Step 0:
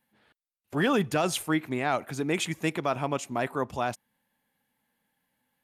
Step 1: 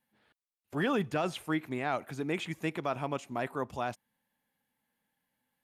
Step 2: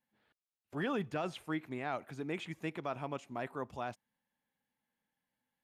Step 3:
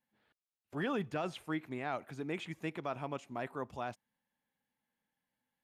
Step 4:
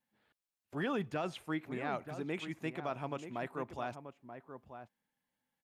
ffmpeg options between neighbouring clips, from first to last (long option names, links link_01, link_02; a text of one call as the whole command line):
ffmpeg -i in.wav -filter_complex "[0:a]acrossover=split=3600[link_01][link_02];[link_02]acompressor=threshold=-45dB:ratio=4:attack=1:release=60[link_03];[link_01][link_03]amix=inputs=2:normalize=0,volume=-5dB" out.wav
ffmpeg -i in.wav -af "highshelf=frequency=8400:gain=-8,volume=-5.5dB" out.wav
ffmpeg -i in.wav -af anull out.wav
ffmpeg -i in.wav -filter_complex "[0:a]asplit=2[link_01][link_02];[link_02]adelay=932.9,volume=-9dB,highshelf=frequency=4000:gain=-21[link_03];[link_01][link_03]amix=inputs=2:normalize=0" out.wav